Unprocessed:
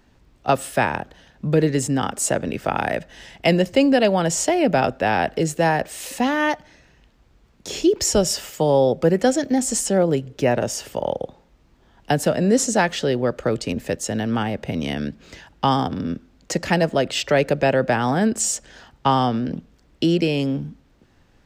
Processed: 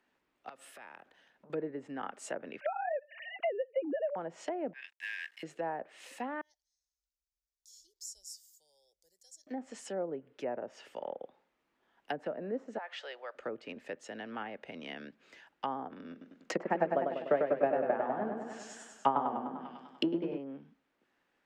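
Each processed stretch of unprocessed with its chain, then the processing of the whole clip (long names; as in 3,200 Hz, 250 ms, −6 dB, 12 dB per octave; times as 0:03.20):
0:00.49–0:01.50: downward compressor 16 to 1, threshold −30 dBFS + saturating transformer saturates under 740 Hz
0:02.60–0:04.16: three sine waves on the formant tracks + multiband upward and downward compressor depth 100%
0:04.73–0:05.43: Chebyshev high-pass filter 1,600 Hz, order 10 + log-companded quantiser 4 bits
0:06.41–0:09.47: inverse Chebyshev band-stop filter 110–2,800 Hz + high-shelf EQ 5,900 Hz −4 dB
0:12.78–0:13.35: running median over 3 samples + high-pass filter 590 Hz 24 dB per octave + downward compressor 4 to 1, threshold −22 dBFS
0:16.11–0:20.38: mains-hum notches 60/120/180/240/300/360/420/480/540 Hz + transient designer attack +11 dB, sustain +2 dB + feedback echo with a swinging delay time 99 ms, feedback 62%, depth 77 cents, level −4.5 dB
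whole clip: three-way crossover with the lows and the highs turned down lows −23 dB, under 220 Hz, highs −22 dB, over 2,500 Hz; treble cut that deepens with the level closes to 920 Hz, closed at −17.5 dBFS; first-order pre-emphasis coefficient 0.9; level +2 dB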